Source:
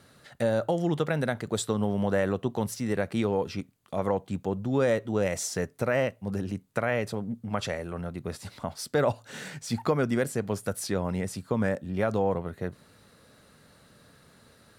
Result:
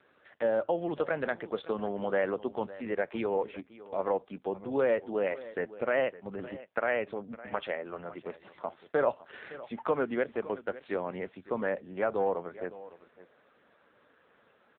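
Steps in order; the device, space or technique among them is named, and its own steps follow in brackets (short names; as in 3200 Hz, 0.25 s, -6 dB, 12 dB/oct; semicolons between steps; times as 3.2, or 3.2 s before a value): satellite phone (BPF 350–3300 Hz; echo 0.559 s -17 dB; AMR-NB 5.9 kbps 8000 Hz)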